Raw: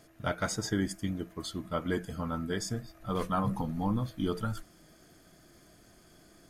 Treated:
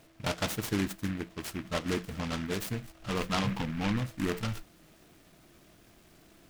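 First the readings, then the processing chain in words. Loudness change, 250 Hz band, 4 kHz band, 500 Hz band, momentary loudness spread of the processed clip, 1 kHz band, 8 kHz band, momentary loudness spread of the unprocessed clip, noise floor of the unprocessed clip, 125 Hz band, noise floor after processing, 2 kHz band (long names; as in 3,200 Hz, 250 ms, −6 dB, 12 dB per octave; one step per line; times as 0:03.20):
+0.5 dB, 0.0 dB, +4.0 dB, −0.5 dB, 7 LU, −1.5 dB, −0.5 dB, 6 LU, −60 dBFS, 0.0 dB, −60 dBFS, +3.5 dB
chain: short delay modulated by noise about 1,700 Hz, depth 0.14 ms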